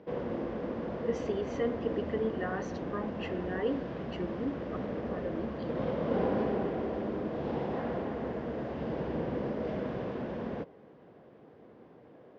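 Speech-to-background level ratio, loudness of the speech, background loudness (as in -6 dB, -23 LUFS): -2.0 dB, -37.5 LUFS, -35.5 LUFS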